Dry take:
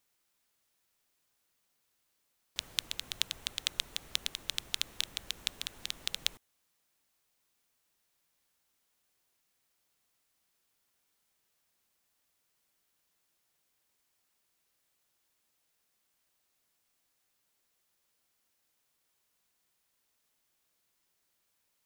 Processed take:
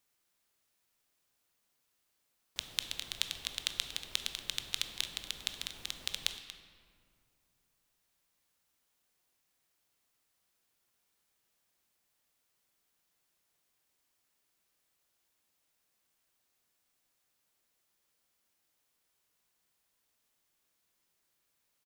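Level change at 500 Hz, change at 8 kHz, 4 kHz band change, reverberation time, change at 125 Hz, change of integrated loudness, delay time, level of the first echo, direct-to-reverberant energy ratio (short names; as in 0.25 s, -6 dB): -0.5 dB, -1.0 dB, -1.0 dB, 2.3 s, -0.5 dB, -1.0 dB, 0.235 s, -14.5 dB, 7.0 dB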